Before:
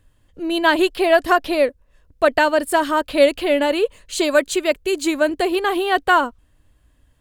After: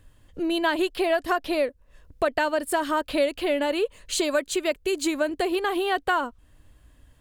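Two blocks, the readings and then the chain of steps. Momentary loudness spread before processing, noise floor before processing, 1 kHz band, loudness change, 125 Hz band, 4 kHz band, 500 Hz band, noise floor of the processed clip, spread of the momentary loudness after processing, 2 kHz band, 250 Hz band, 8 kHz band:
6 LU, −59 dBFS, −7.5 dB, −7.0 dB, can't be measured, −6.0 dB, −7.5 dB, −58 dBFS, 4 LU, −8.0 dB, −5.5 dB, −3.0 dB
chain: downward compressor 2.5 to 1, threshold −29 dBFS, peak gain reduction 13.5 dB
level +3 dB

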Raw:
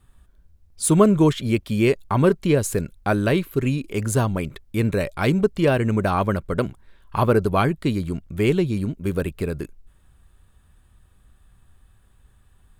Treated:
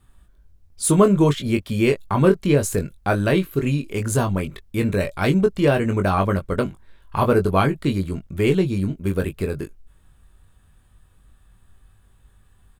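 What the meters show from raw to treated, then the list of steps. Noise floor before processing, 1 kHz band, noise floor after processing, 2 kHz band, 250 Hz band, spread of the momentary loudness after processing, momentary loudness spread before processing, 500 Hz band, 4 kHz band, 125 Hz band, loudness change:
−57 dBFS, +1.0 dB, −56 dBFS, +1.0 dB, +0.5 dB, 9 LU, 9 LU, +1.0 dB, +1.0 dB, +1.0 dB, +1.0 dB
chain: double-tracking delay 21 ms −6 dB

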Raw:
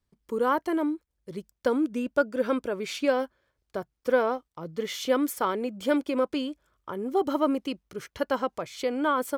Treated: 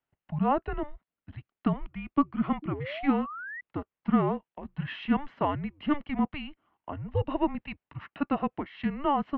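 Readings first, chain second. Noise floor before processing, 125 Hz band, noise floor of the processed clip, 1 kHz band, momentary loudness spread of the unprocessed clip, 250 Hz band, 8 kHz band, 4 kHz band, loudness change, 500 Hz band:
−80 dBFS, +13.5 dB, below −85 dBFS, −1.0 dB, 13 LU, 0.0 dB, below −35 dB, −7.0 dB, −2.5 dB, −8.5 dB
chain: sound drawn into the spectrogram rise, 0:02.62–0:03.61, 580–2,300 Hz −39 dBFS
single-sideband voice off tune −290 Hz 410–3,200 Hz

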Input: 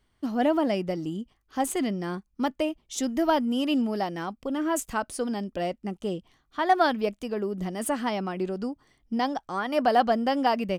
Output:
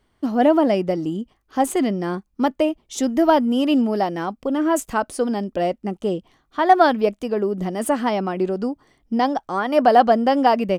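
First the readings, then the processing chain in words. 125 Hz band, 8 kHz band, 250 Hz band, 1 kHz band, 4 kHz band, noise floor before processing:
+5.5 dB, +2.5 dB, +7.0 dB, +7.5 dB, +3.5 dB, −71 dBFS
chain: parametric band 500 Hz +6 dB 3 octaves
level +2.5 dB

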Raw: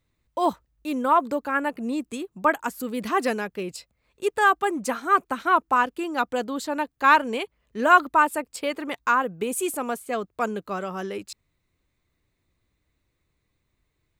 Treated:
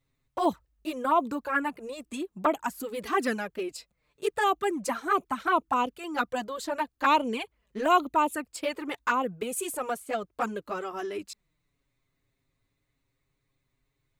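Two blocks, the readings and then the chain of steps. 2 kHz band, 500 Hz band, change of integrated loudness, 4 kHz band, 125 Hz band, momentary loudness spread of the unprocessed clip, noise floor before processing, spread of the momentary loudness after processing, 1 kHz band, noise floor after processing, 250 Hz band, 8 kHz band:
−7.5 dB, −3.5 dB, −5.0 dB, −2.0 dB, can't be measured, 13 LU, −76 dBFS, 13 LU, −5.0 dB, −79 dBFS, −4.0 dB, −3.0 dB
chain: flanger swept by the level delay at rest 7.4 ms, full sweep at −17 dBFS

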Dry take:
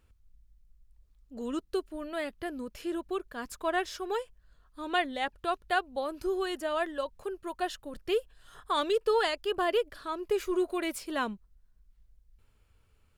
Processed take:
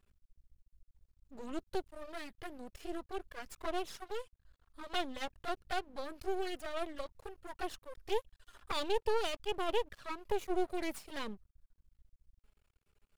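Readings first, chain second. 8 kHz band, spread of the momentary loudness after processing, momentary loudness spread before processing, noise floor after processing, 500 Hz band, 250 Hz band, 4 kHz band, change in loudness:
−5.5 dB, 13 LU, 10 LU, below −85 dBFS, −7.5 dB, −8.0 dB, −5.5 dB, −7.5 dB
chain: flanger swept by the level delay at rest 5.2 ms, full sweep at −26.5 dBFS
half-wave rectification

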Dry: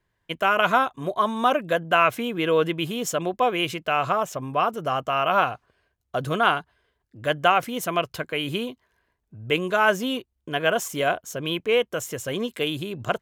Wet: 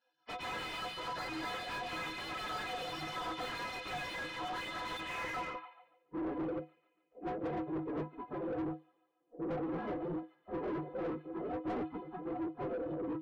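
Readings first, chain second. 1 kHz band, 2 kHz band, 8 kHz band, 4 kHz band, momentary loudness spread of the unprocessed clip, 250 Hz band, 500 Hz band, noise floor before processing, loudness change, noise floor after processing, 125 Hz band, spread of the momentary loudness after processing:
−17.5 dB, −16.5 dB, −20.0 dB, −15.0 dB, 10 LU, −9.5 dB, −16.5 dB, −76 dBFS, −15.5 dB, −77 dBFS, −14.0 dB, 5 LU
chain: partials spread apart or drawn together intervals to 110%
parametric band 230 Hz −7.5 dB 0.35 octaves
noise gate −43 dBFS, range −8 dB
gate on every frequency bin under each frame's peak −25 dB weak
head-to-tape spacing loss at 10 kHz 30 dB
notch filter 4,600 Hz, Q 6.1
stiff-string resonator 150 Hz, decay 0.22 s, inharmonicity 0.03
on a send: delay with a high-pass on its return 143 ms, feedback 58%, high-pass 2,500 Hz, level −12 dB
on the sum: low-pass filter sweep 5,400 Hz → 370 Hz, 0:04.74–0:06.14
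mid-hump overdrive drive 37 dB, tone 1,000 Hz, clips at −43.5 dBFS
level +15.5 dB

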